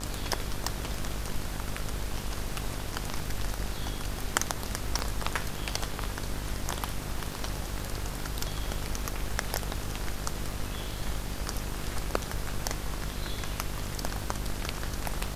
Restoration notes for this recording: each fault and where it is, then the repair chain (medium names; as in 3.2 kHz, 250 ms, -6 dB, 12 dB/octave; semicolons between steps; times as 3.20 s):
buzz 50 Hz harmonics 35 -38 dBFS
crackle 52 per s -39 dBFS
4.99 s: pop -15 dBFS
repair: de-click; de-hum 50 Hz, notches 35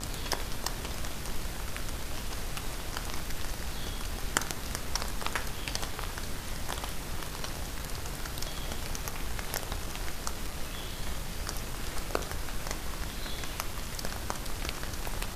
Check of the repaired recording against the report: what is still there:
4.99 s: pop